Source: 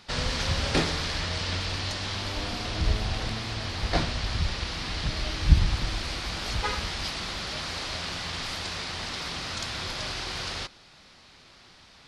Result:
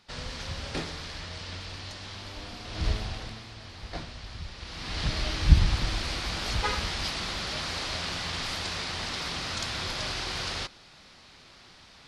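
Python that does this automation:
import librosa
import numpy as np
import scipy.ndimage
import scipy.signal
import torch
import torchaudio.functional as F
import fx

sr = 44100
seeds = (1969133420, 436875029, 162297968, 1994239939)

y = fx.gain(x, sr, db=fx.line((2.65, -9.0), (2.86, -2.0), (3.51, -12.0), (4.54, -12.0), (5.02, 0.5)))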